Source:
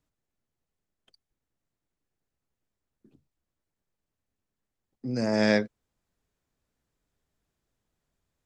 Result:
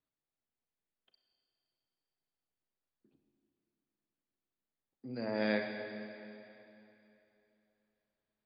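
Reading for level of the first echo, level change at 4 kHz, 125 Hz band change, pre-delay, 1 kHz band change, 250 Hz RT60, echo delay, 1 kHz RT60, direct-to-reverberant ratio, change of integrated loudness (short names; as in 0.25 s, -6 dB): none, -10.0 dB, -13.0 dB, 34 ms, -8.0 dB, 2.9 s, none, 3.0 s, 4.0 dB, -11.5 dB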